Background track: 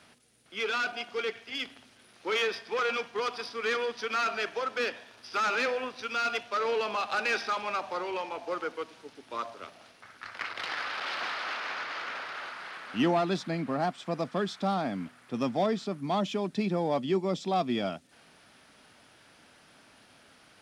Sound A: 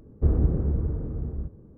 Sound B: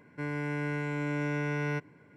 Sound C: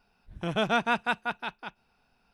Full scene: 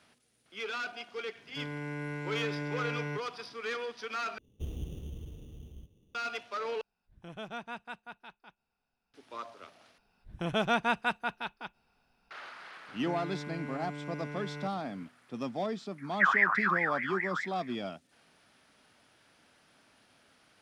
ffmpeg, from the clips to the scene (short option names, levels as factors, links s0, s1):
-filter_complex "[2:a]asplit=2[s0][s1];[1:a]asplit=2[s2][s3];[3:a]asplit=2[s4][s5];[0:a]volume=0.473[s6];[s2]acrusher=samples=14:mix=1:aa=0.000001[s7];[s1]alimiter=level_in=3.35:limit=0.0631:level=0:latency=1:release=71,volume=0.299[s8];[s3]aeval=exprs='val(0)*sin(2*PI*1600*n/s+1600*0.3/4.8*sin(2*PI*4.8*n/s))':c=same[s9];[s6]asplit=4[s10][s11][s12][s13];[s10]atrim=end=4.384[s14];[s7]atrim=end=1.77,asetpts=PTS-STARTPTS,volume=0.141[s15];[s11]atrim=start=6.146:end=6.814[s16];[s4]atrim=end=2.33,asetpts=PTS-STARTPTS,volume=0.168[s17];[s12]atrim=start=9.136:end=9.984[s18];[s5]atrim=end=2.33,asetpts=PTS-STARTPTS,volume=0.75[s19];[s13]atrim=start=12.306[s20];[s0]atrim=end=2.16,asetpts=PTS-STARTPTS,volume=0.562,afade=t=in:d=0.004:c=hsin,afade=t=out:st=2.156:d=0.004:c=hsin,adelay=1380[s21];[s8]atrim=end=2.16,asetpts=PTS-STARTPTS,afade=t=in:d=0.004:c=hsin,afade=t=out:st=2.156:d=0.004:c=hsin,adelay=12880[s22];[s9]atrim=end=1.77,asetpts=PTS-STARTPTS,volume=0.794,afade=t=in:d=0.004:c=hsin,afade=t=out:st=1.766:d=0.004:c=hsin,adelay=15980[s23];[s14][s15]acrossfade=d=0.004:c1=hsin:c2=hsin[s24];[s24][s16]acrossfade=d=0.004:c1=hsin:c2=hsin[s25];[s25][s17]acrossfade=d=0.004:c1=hsin:c2=hsin[s26];[s26][s18]acrossfade=d=0.004:c1=hsin:c2=hsin[s27];[s27][s19]acrossfade=d=0.004:c1=hsin:c2=hsin[s28];[s28][s20]acrossfade=d=0.004:c1=hsin:c2=hsin[s29];[s29][s21][s22][s23]amix=inputs=4:normalize=0"